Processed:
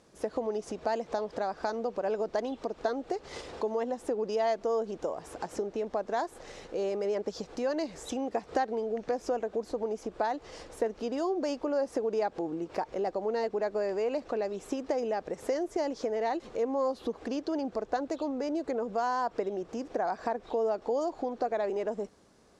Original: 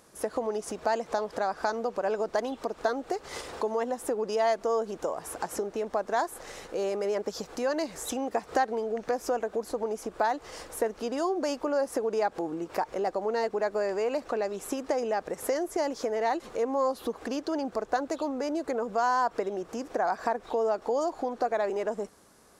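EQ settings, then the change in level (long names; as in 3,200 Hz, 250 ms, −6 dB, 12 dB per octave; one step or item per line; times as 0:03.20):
high-frequency loss of the air 86 metres
parametric band 1,300 Hz −6 dB 1.6 octaves
0.0 dB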